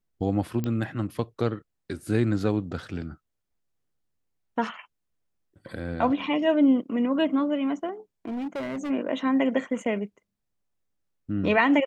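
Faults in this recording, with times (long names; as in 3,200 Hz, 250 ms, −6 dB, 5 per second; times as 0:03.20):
0:00.64: click −17 dBFS
0:08.25–0:08.91: clipping −28.5 dBFS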